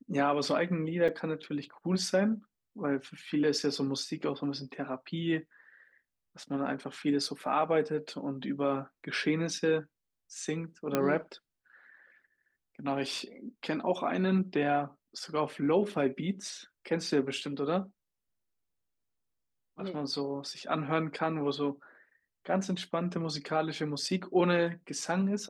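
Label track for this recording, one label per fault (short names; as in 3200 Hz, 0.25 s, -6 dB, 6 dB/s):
1.080000	1.090000	gap 5.2 ms
10.950000	10.950000	pop -13 dBFS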